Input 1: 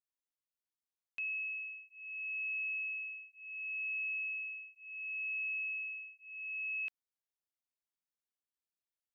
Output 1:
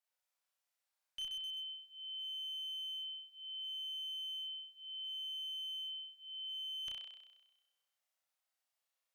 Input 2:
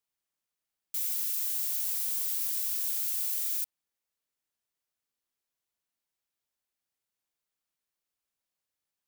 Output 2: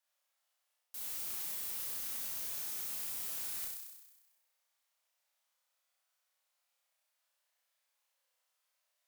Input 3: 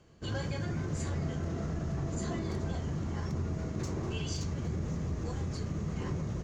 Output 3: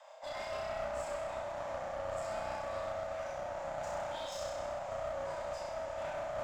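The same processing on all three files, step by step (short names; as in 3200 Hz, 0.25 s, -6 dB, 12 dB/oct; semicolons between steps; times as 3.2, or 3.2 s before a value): high shelf 5100 Hz -3.5 dB; reverse; compressor 8:1, threshold -42 dBFS; reverse; wavefolder -33.5 dBFS; on a send: flutter echo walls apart 5.5 m, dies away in 1.1 s; on the sum: frequency shift +490 Hz; one-sided clip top -44.5 dBFS; gain +3.5 dB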